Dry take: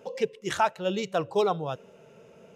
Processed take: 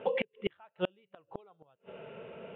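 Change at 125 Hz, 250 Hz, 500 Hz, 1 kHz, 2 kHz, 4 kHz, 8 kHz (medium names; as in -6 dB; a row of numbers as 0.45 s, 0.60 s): -10.5 dB, -8.0 dB, -8.5 dB, -16.5 dB, -7.0 dB, -9.0 dB, under -35 dB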